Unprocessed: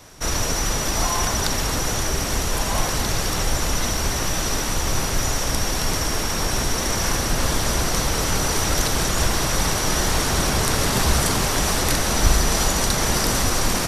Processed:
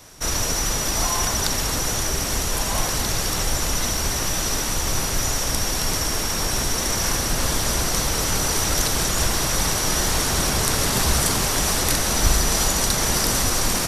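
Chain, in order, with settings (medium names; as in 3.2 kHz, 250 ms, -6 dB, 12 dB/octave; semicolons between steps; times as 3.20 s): treble shelf 4.5 kHz +5.5 dB; trim -2 dB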